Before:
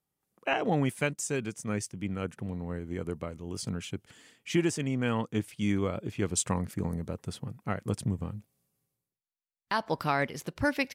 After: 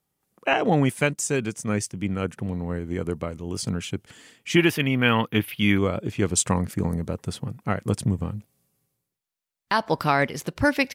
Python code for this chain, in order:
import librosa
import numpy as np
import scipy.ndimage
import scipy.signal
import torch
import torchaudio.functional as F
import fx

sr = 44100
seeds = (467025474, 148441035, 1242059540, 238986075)

y = fx.curve_eq(x, sr, hz=(520.0, 3000.0, 8000.0, 12000.0), db=(0, 10, -15, 13), at=(4.56, 5.78))
y = y * librosa.db_to_amplitude(7.0)